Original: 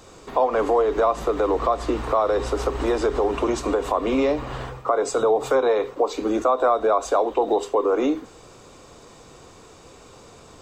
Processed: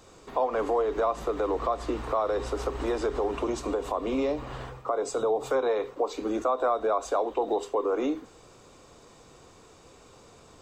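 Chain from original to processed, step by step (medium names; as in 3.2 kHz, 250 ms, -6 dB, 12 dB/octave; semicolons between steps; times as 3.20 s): 3.42–5.52 s: dynamic bell 1.7 kHz, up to -4 dB, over -35 dBFS, Q 1.2; trim -6.5 dB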